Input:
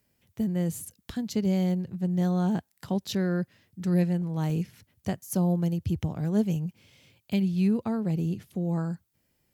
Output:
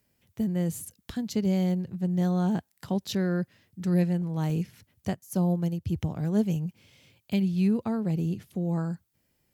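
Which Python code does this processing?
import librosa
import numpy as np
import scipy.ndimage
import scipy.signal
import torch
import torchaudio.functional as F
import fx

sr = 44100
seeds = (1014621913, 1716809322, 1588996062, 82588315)

y = fx.upward_expand(x, sr, threshold_db=-35.0, expansion=1.5, at=(5.14, 5.93))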